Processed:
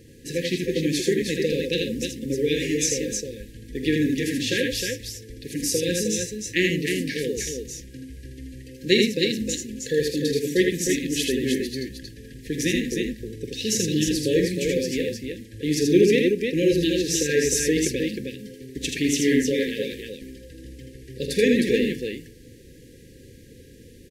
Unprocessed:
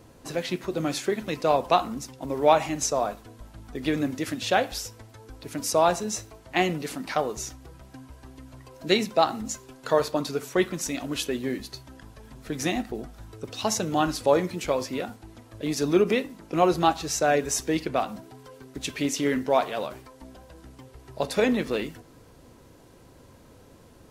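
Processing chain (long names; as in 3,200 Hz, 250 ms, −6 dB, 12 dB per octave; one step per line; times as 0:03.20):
linear-phase brick-wall band-stop 540–1,600 Hz
multi-tap delay 46/80/311 ms −12/−4/−5 dB
level +3 dB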